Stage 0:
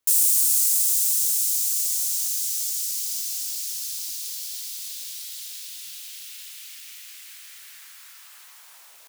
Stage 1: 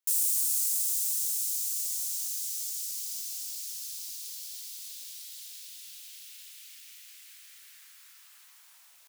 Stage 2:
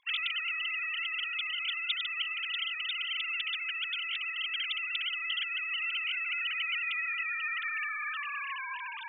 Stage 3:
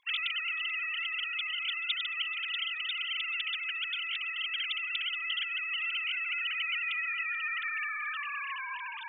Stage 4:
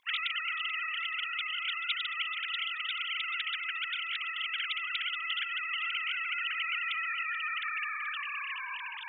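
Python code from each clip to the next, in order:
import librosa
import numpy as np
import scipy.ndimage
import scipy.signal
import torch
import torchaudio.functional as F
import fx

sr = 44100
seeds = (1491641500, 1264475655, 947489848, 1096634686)

y1 = fx.highpass(x, sr, hz=1200.0, slope=6)
y1 = F.gain(torch.from_numpy(y1), -8.0).numpy()
y2 = fx.sine_speech(y1, sr)
y3 = fx.echo_feedback(y2, sr, ms=432, feedback_pct=32, wet_db=-21.5)
y4 = fx.spec_clip(y3, sr, under_db=15)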